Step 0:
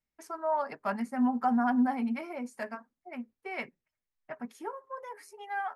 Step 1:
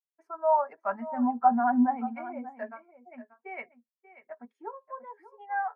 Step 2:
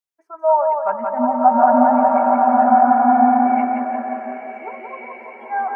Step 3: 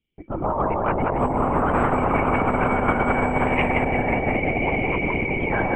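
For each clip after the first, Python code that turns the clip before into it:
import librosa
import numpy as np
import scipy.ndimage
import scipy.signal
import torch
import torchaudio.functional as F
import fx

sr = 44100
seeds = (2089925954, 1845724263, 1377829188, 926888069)

y1 = fx.bass_treble(x, sr, bass_db=-13, treble_db=-13)
y1 = y1 + 10.0 ** (-10.0 / 20.0) * np.pad(y1, (int(586 * sr / 1000.0), 0))[:len(y1)]
y1 = fx.spectral_expand(y1, sr, expansion=1.5)
y1 = y1 * 10.0 ** (6.5 / 20.0)
y2 = fx.dynamic_eq(y1, sr, hz=680.0, q=1.0, threshold_db=-38.0, ratio=4.0, max_db=6)
y2 = fx.echo_feedback(y2, sr, ms=175, feedback_pct=51, wet_db=-4.0)
y2 = fx.rev_bloom(y2, sr, seeds[0], attack_ms=1440, drr_db=-3.5)
y2 = y2 * 10.0 ** (3.0 / 20.0)
y3 = fx.formant_cascade(y2, sr, vowel='i')
y3 = fx.lpc_vocoder(y3, sr, seeds[1], excitation='whisper', order=10)
y3 = fx.spectral_comp(y3, sr, ratio=10.0)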